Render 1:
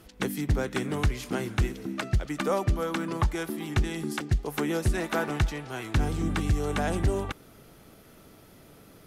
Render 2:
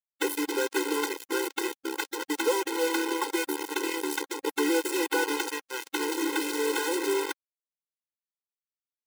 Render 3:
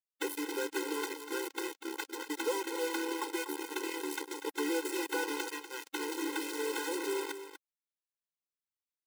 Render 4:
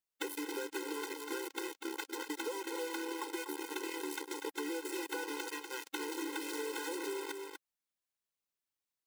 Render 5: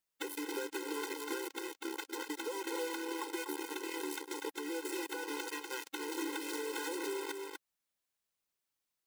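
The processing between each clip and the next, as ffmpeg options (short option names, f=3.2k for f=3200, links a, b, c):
-af "acrusher=bits=4:mix=0:aa=0.000001,afftfilt=real='re*eq(mod(floor(b*sr/1024/270),2),1)':imag='im*eq(mod(floor(b*sr/1024/270),2),1)':win_size=1024:overlap=0.75,volume=4dB"
-af "aecho=1:1:243:0.282,volume=-7.5dB"
-af "acompressor=threshold=-38dB:ratio=6,volume=2dB"
-af "alimiter=level_in=6.5dB:limit=-24dB:level=0:latency=1:release=395,volume=-6.5dB,volume=3.5dB"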